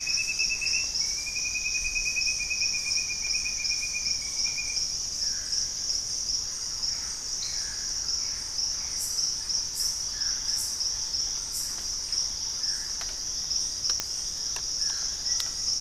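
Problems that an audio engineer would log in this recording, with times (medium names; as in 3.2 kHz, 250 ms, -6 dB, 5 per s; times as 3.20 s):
14.00 s: pop -10 dBFS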